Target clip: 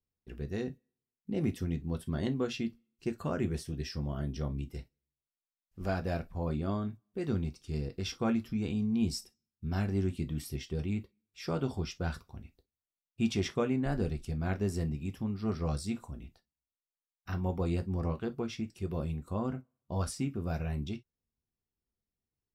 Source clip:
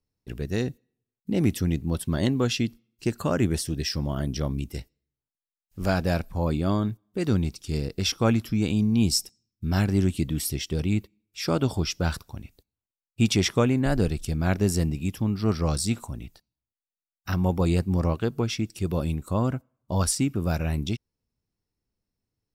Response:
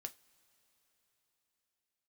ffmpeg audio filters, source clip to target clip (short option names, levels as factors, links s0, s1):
-filter_complex "[0:a]highshelf=f=4500:g=-10[s0];[1:a]atrim=start_sample=2205,atrim=end_sample=3087[s1];[s0][s1]afir=irnorm=-1:irlink=0,volume=0.631"